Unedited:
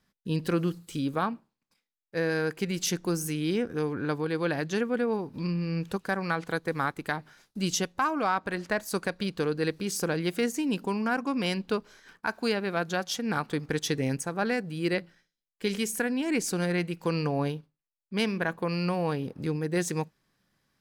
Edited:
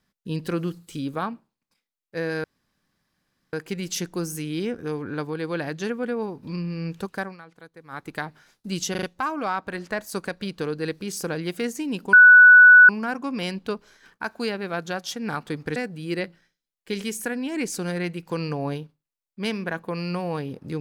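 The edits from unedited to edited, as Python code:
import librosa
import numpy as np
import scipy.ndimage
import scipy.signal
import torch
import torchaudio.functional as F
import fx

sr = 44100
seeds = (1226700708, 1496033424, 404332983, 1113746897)

y = fx.edit(x, sr, fx.insert_room_tone(at_s=2.44, length_s=1.09),
    fx.fade_down_up(start_s=6.11, length_s=0.86, db=-16.5, fade_s=0.17),
    fx.stutter(start_s=7.82, slice_s=0.04, count=4),
    fx.insert_tone(at_s=10.92, length_s=0.76, hz=1480.0, db=-6.5),
    fx.cut(start_s=13.79, length_s=0.71), tone=tone)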